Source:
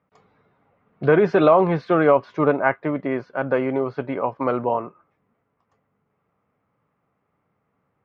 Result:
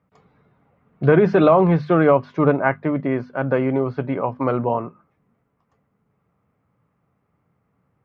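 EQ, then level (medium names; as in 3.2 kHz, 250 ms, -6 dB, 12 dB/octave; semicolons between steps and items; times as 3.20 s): tone controls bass +9 dB, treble -1 dB; hum notches 50/100/150/200/250 Hz; 0.0 dB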